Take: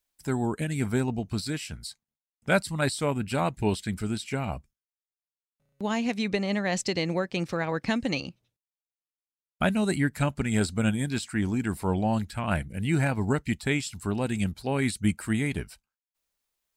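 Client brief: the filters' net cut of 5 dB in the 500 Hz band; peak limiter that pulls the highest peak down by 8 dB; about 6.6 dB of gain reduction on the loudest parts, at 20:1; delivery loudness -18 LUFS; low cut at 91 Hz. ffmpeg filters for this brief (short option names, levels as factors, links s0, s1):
-af "highpass=91,equalizer=f=500:t=o:g=-6.5,acompressor=threshold=0.0447:ratio=20,volume=7.5,alimiter=limit=0.422:level=0:latency=1"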